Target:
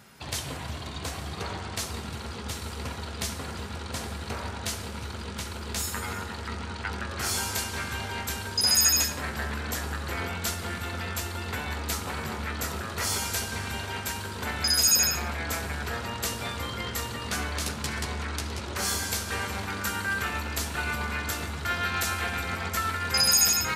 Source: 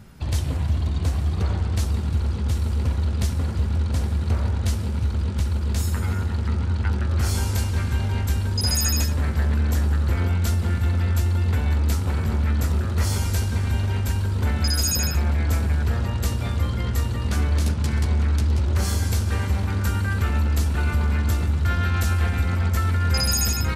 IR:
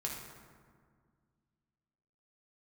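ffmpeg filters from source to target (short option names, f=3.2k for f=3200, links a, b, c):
-filter_complex "[0:a]highpass=f=820:p=1,asplit=2[a][b];[1:a]atrim=start_sample=2205,afade=t=out:st=0.22:d=0.01,atrim=end_sample=10143[c];[b][c]afir=irnorm=-1:irlink=0,volume=-5dB[d];[a][d]amix=inputs=2:normalize=0"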